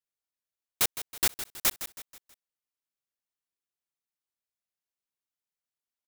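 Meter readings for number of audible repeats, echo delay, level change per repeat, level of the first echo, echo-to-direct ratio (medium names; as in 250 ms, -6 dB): 4, 161 ms, -7.5 dB, -12.0 dB, -11.0 dB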